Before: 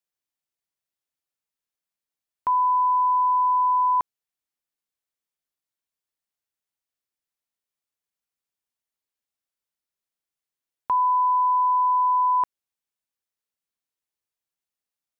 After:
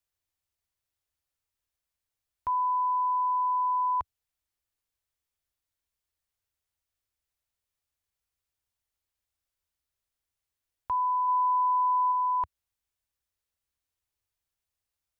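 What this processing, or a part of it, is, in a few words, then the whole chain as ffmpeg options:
car stereo with a boomy subwoofer: -filter_complex "[0:a]lowshelf=frequency=120:width_type=q:width=1.5:gain=12.5,alimiter=level_in=1dB:limit=-24dB:level=0:latency=1,volume=-1dB,asettb=1/sr,asplit=3[link_01][link_02][link_03];[link_01]atrim=end=11.284[link_04];[link_02]atrim=start=11.28:end=12.12,asetpts=PTS-STARTPTS,afade=type=in:duration=0.004:curve=qsin,afade=type=out:start_time=0.836:duration=0.004:curve=qsin,equalizer=frequency=1100:width=0.57:gain=2[link_05];[link_03]atrim=start=12.116[link_06];[link_04][link_05]acrossfade=duration=0.004:curve1=hsin:curve2=qsin[link_07];[link_07][link_06]acrossfade=duration=0.004:curve1=qsin:curve2=hsin,volume=1.5dB"

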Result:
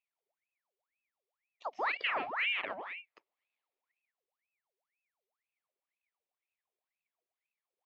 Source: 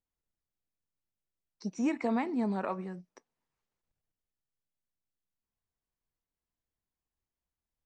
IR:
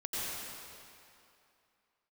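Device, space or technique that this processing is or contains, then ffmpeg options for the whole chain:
voice changer toy: -af "aeval=exprs='val(0)*sin(2*PI*1500*n/s+1500*0.75/2*sin(2*PI*2*n/s))':channel_layout=same,highpass=410,equalizer=frequency=660:width_type=q:width=4:gain=3,equalizer=frequency=1500:width_type=q:width=4:gain=-8,equalizer=frequency=2300:width_type=q:width=4:gain=4,lowpass=frequency=4100:width=0.5412,lowpass=frequency=4100:width=1.3066"

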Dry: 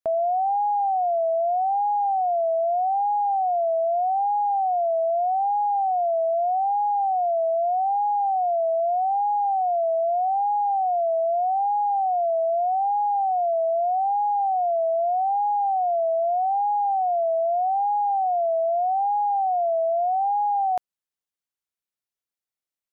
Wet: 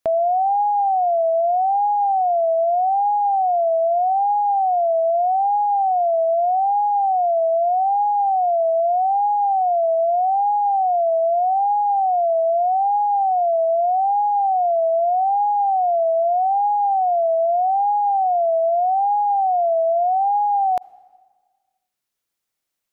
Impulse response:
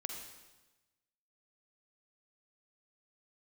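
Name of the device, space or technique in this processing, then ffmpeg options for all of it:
ducked reverb: -filter_complex "[0:a]asplit=3[link_01][link_02][link_03];[1:a]atrim=start_sample=2205[link_04];[link_02][link_04]afir=irnorm=-1:irlink=0[link_05];[link_03]apad=whole_len=1010970[link_06];[link_05][link_06]sidechaincompress=threshold=-44dB:ratio=8:attack=16:release=966,volume=3.5dB[link_07];[link_01][link_07]amix=inputs=2:normalize=0,volume=3.5dB"

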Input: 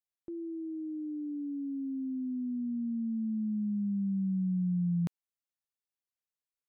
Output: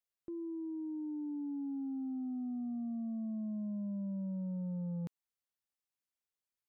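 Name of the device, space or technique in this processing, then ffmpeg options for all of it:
soft clipper into limiter: -af "asoftclip=type=tanh:threshold=-31dB,alimiter=level_in=10.5dB:limit=-24dB:level=0:latency=1,volume=-10.5dB,volume=-1.5dB"

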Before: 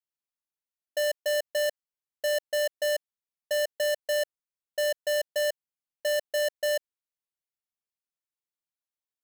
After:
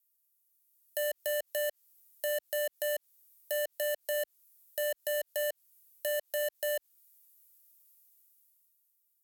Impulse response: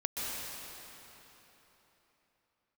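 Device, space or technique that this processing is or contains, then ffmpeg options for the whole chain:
FM broadcast chain: -filter_complex "[0:a]acrossover=split=3900[link_01][link_02];[link_02]acompressor=threshold=-50dB:ratio=4:attack=1:release=60[link_03];[link_01][link_03]amix=inputs=2:normalize=0,highpass=41,dynaudnorm=framelen=110:gausssize=17:maxgain=12dB,acrossover=split=310|7100[link_04][link_05][link_06];[link_04]acompressor=threshold=-46dB:ratio=4[link_07];[link_05]acompressor=threshold=-15dB:ratio=4[link_08];[link_06]acompressor=threshold=-54dB:ratio=4[link_09];[link_07][link_08][link_09]amix=inputs=3:normalize=0,aemphasis=mode=production:type=50fm,alimiter=limit=-17.5dB:level=0:latency=1,asoftclip=type=hard:threshold=-21.5dB,lowpass=frequency=15000:width=0.5412,lowpass=frequency=15000:width=1.3066,aemphasis=mode=production:type=50fm,volume=-5.5dB"

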